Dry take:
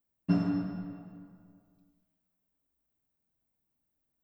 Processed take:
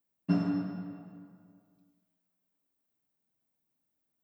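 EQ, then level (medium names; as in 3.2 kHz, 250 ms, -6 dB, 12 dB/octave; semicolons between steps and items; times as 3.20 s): high-pass 130 Hz 12 dB/octave; 0.0 dB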